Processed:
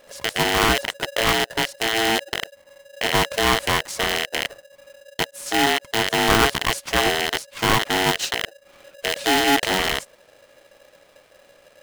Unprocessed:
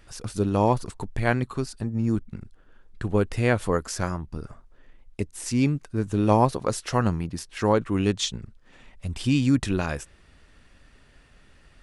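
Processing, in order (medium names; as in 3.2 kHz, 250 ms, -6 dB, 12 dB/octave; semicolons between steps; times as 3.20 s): rattle on loud lows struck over -38 dBFS, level -10 dBFS; polarity switched at an audio rate 560 Hz; trim +1 dB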